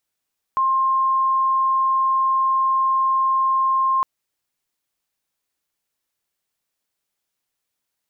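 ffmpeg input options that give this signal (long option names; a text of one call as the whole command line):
ffmpeg -f lavfi -i "sine=frequency=1060:duration=3.46:sample_rate=44100,volume=2.56dB" out.wav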